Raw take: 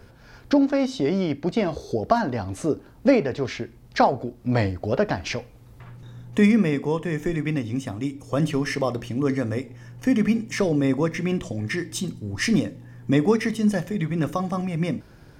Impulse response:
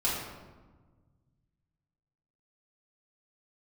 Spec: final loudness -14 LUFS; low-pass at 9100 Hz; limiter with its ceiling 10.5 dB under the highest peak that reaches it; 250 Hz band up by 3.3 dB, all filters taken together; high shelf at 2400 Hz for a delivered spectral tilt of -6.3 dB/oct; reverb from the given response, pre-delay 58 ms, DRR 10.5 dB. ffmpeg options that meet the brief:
-filter_complex "[0:a]lowpass=9.1k,equalizer=f=250:t=o:g=4,highshelf=f=2.4k:g=-3,alimiter=limit=-13.5dB:level=0:latency=1,asplit=2[a][b];[1:a]atrim=start_sample=2205,adelay=58[c];[b][c]afir=irnorm=-1:irlink=0,volume=-19.5dB[d];[a][d]amix=inputs=2:normalize=0,volume=10dB"

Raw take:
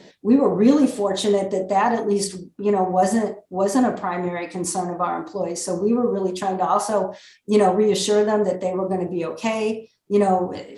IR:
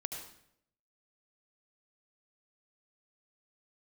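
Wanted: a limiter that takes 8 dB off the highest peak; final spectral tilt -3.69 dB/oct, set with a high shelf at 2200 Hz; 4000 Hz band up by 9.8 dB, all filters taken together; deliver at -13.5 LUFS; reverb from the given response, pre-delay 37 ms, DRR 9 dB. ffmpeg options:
-filter_complex "[0:a]highshelf=f=2.2k:g=9,equalizer=f=4k:t=o:g=3.5,alimiter=limit=-11.5dB:level=0:latency=1,asplit=2[a][b];[1:a]atrim=start_sample=2205,adelay=37[c];[b][c]afir=irnorm=-1:irlink=0,volume=-9dB[d];[a][d]amix=inputs=2:normalize=0,volume=8dB"

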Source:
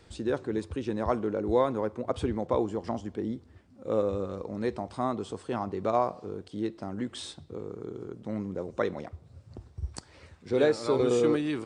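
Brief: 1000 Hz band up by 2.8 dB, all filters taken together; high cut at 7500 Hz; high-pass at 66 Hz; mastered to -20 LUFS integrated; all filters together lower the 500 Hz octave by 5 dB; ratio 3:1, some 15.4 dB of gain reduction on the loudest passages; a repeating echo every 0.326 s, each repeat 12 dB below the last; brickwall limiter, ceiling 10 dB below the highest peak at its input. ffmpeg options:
-af "highpass=66,lowpass=7.5k,equalizer=f=500:t=o:g=-7.5,equalizer=f=1k:t=o:g=6,acompressor=threshold=-42dB:ratio=3,alimiter=level_in=10dB:limit=-24dB:level=0:latency=1,volume=-10dB,aecho=1:1:326|652|978:0.251|0.0628|0.0157,volume=26dB"

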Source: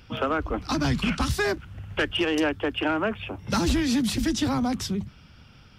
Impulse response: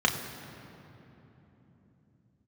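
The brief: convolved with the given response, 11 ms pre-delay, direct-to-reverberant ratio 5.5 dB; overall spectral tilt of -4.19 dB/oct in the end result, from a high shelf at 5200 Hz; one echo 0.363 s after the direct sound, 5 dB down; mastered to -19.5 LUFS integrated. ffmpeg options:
-filter_complex "[0:a]highshelf=f=5.2k:g=7.5,aecho=1:1:363:0.562,asplit=2[a][b];[1:a]atrim=start_sample=2205,adelay=11[c];[b][c]afir=irnorm=-1:irlink=0,volume=-19dB[d];[a][d]amix=inputs=2:normalize=0,volume=4dB"

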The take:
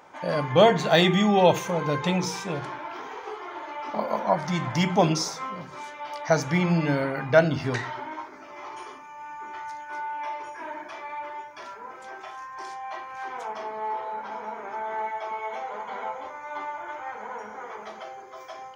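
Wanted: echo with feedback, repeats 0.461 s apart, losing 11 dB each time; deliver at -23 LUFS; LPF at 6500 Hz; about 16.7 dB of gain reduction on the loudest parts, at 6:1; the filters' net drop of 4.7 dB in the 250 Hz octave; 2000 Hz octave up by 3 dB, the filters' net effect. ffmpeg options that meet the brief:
-af "lowpass=6.5k,equalizer=f=250:t=o:g=-8,equalizer=f=2k:t=o:g=4,acompressor=threshold=-31dB:ratio=6,aecho=1:1:461|922|1383:0.282|0.0789|0.0221,volume=12.5dB"

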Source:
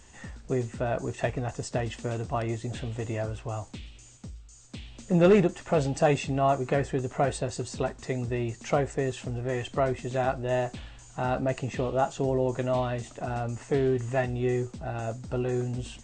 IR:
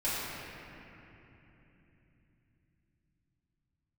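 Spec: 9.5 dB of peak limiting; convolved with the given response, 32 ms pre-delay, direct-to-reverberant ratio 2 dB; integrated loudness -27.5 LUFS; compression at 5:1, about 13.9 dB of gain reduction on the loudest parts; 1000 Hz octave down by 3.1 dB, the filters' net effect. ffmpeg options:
-filter_complex "[0:a]equalizer=f=1k:t=o:g=-5,acompressor=threshold=-32dB:ratio=5,alimiter=level_in=7dB:limit=-24dB:level=0:latency=1,volume=-7dB,asplit=2[a][b];[1:a]atrim=start_sample=2205,adelay=32[c];[b][c]afir=irnorm=-1:irlink=0,volume=-11dB[d];[a][d]amix=inputs=2:normalize=0,volume=10dB"

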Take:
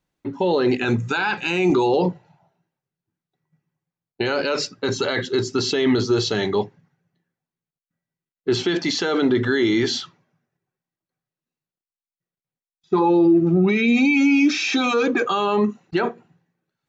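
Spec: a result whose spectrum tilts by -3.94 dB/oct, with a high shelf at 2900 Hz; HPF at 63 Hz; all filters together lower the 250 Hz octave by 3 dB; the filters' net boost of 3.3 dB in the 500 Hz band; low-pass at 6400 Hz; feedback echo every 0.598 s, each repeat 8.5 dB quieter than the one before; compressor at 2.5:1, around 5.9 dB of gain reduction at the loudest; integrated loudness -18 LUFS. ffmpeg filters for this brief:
-af "highpass=63,lowpass=6.4k,equalizer=f=250:t=o:g=-8.5,equalizer=f=500:t=o:g=8,highshelf=f=2.9k:g=7,acompressor=threshold=-20dB:ratio=2.5,aecho=1:1:598|1196|1794|2392:0.376|0.143|0.0543|0.0206,volume=4.5dB"

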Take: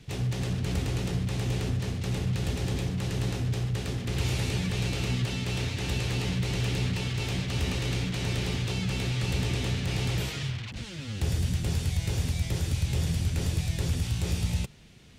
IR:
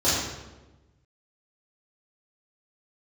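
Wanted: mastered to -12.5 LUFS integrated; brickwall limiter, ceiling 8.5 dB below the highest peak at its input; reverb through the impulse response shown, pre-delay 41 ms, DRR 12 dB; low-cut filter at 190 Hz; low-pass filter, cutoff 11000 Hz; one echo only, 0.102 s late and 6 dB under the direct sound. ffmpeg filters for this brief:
-filter_complex "[0:a]highpass=190,lowpass=11k,alimiter=level_in=4.5dB:limit=-24dB:level=0:latency=1,volume=-4.5dB,aecho=1:1:102:0.501,asplit=2[a][b];[1:a]atrim=start_sample=2205,adelay=41[c];[b][c]afir=irnorm=-1:irlink=0,volume=-28dB[d];[a][d]amix=inputs=2:normalize=0,volume=23.5dB"

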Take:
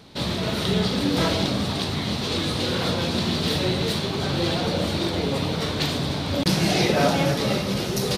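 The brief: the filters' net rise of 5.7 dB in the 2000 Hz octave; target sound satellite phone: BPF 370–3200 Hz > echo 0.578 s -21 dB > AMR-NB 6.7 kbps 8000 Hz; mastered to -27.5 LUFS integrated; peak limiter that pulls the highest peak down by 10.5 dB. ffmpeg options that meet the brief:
-af "equalizer=f=2k:t=o:g=8,alimiter=limit=-16dB:level=0:latency=1,highpass=370,lowpass=3.2k,aecho=1:1:578:0.0891,volume=5dB" -ar 8000 -c:a libopencore_amrnb -b:a 6700

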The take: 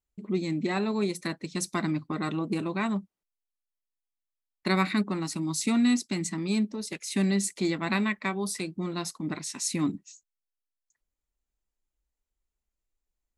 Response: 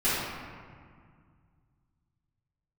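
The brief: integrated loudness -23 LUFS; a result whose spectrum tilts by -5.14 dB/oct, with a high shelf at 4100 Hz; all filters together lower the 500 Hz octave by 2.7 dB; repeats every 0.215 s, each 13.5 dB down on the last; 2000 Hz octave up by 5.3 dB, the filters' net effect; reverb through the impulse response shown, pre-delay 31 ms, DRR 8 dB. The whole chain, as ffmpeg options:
-filter_complex "[0:a]equalizer=f=500:t=o:g=-4.5,equalizer=f=2k:t=o:g=8,highshelf=f=4.1k:g=-7.5,aecho=1:1:215|430:0.211|0.0444,asplit=2[a][b];[1:a]atrim=start_sample=2205,adelay=31[c];[b][c]afir=irnorm=-1:irlink=0,volume=-21.5dB[d];[a][d]amix=inputs=2:normalize=0,volume=5.5dB"

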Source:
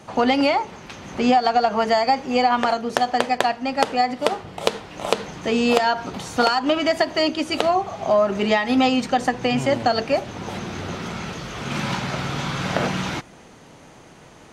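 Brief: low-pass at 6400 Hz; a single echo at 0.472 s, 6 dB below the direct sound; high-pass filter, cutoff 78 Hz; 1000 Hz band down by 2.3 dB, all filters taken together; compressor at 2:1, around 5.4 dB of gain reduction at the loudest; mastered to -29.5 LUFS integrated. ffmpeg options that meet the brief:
-af "highpass=78,lowpass=6.4k,equalizer=f=1k:t=o:g=-3.5,acompressor=threshold=-25dB:ratio=2,aecho=1:1:472:0.501,volume=-3dB"

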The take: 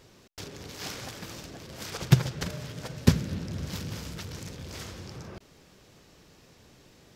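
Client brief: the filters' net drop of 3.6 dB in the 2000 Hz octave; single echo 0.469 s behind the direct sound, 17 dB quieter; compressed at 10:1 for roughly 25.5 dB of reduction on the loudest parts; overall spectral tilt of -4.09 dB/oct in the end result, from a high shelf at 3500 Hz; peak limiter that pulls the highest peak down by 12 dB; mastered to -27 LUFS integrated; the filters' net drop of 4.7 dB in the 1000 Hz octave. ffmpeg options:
-af "equalizer=f=1k:t=o:g=-5.5,equalizer=f=2k:t=o:g=-4.5,highshelf=f=3.5k:g=5,acompressor=threshold=-40dB:ratio=10,alimiter=level_in=10dB:limit=-24dB:level=0:latency=1,volume=-10dB,aecho=1:1:469:0.141,volume=19.5dB"

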